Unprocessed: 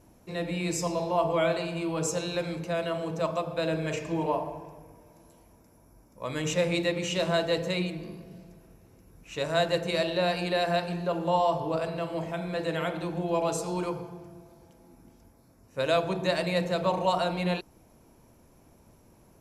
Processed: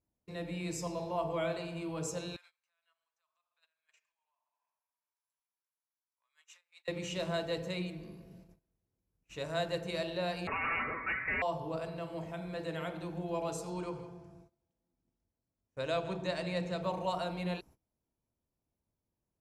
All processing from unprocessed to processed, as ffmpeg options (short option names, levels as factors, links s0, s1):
-filter_complex "[0:a]asettb=1/sr,asplit=3[s0][s1][s2];[s0]atrim=end=2.364[s3];[s1]atrim=start=2.36:end=6.88,asetpts=PTS-STARTPTS,afade=t=in:d=0.004:c=qsin,afade=t=out:st=4.516:d=0.004:c=qsin,acompressor=threshold=0.01:ratio=8:attack=3.2:release=140:knee=1:detection=peak,highpass=f=1100:w=0.5412,highpass=f=1100:w=1.3066[s4];[s2]atrim=start=6.876[s5];[s3][s4]acrossfade=d=0.004:c1=hsin:c2=qsin[s6];[s6][s5]acrossfade=d=0.004:c1=qsin:c2=hsin,asettb=1/sr,asplit=3[s7][s8][s9];[s7]atrim=end=10.474[s10];[s8]atrim=start=10.47:end=11.42,asetpts=PTS-STARTPTS,afade=t=in:d=0.004:c=qsin,afade=t=out:st=0.946:d=0.004:c=qsin,highpass=f=1000:w=0.5412,highpass=f=1000:w=1.3066,aeval=exprs='0.106*sin(PI/2*6.31*val(0)/0.106)':c=same,lowpass=f=2500:t=q:w=0.5098,lowpass=f=2500:t=q:w=0.6013,lowpass=f=2500:t=q:w=0.9,lowpass=f=2500:t=q:w=2.563,afreqshift=-2900[s11];[s9]atrim=start=11.416[s12];[s10][s11]acrossfade=d=0.004:c1=hsin:c2=qsin[s13];[s13][s12]acrossfade=d=0.004:c1=qsin:c2=hsin,asettb=1/sr,asplit=3[s14][s15][s16];[s14]atrim=end=13.704[s17];[s15]atrim=start=13.7:end=16.83,asetpts=PTS-STARTPTS,afade=t=in:d=0.004:c=qsin,afade=t=out:st=3.126:d=0.004:c=qsin,lowpass=f=9400:w=0.5412,lowpass=f=9400:w=1.3066,aecho=1:1:162:0.2,atrim=end_sample=138033[s18];[s16]atrim=start=16.826[s19];[s17][s18]acrossfade=d=0.004:c1=hsin:c2=qsin[s20];[s20][s19]acrossfade=d=0.004:c1=qsin:c2=hsin,agate=range=0.0708:threshold=0.00398:ratio=16:detection=peak,equalizer=f=61:w=0.5:g=5,volume=0.355"